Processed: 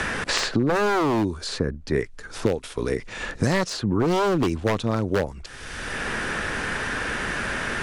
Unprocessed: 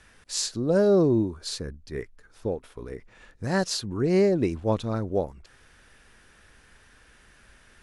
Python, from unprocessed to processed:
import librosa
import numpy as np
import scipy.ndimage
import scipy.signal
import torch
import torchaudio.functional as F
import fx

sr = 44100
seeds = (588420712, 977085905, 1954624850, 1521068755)

y = scipy.signal.sosfilt(scipy.signal.butter(4, 9800.0, 'lowpass', fs=sr, output='sos'), x)
y = 10.0 ** (-20.5 / 20.0) * (np.abs((y / 10.0 ** (-20.5 / 20.0) + 3.0) % 4.0 - 2.0) - 1.0)
y = fx.band_squash(y, sr, depth_pct=100)
y = y * librosa.db_to_amplitude(5.5)